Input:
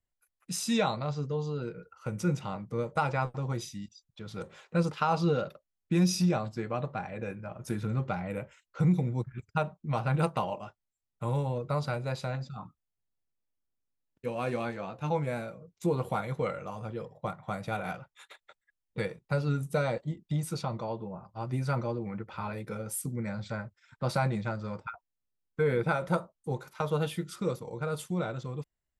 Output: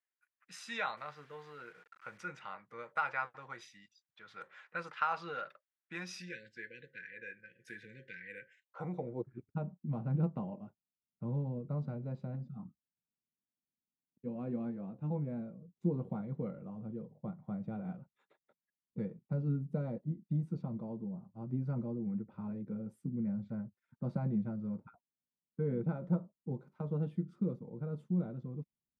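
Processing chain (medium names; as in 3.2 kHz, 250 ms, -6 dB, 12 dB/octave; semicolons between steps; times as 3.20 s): 0.97–2.18 s: send-on-delta sampling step -50 dBFS; 6.19–8.71 s: spectral selection erased 540–1500 Hz; band-pass sweep 1.7 kHz -> 210 Hz, 8.37–9.63 s; trim +2.5 dB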